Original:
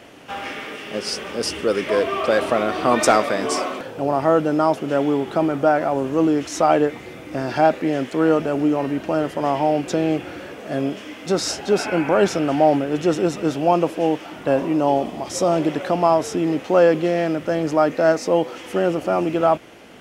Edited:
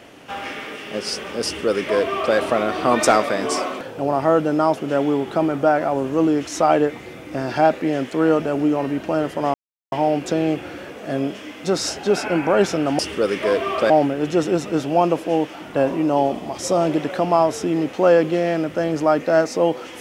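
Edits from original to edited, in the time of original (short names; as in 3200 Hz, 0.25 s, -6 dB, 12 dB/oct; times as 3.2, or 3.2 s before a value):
1.45–2.36 copy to 12.61
9.54 insert silence 0.38 s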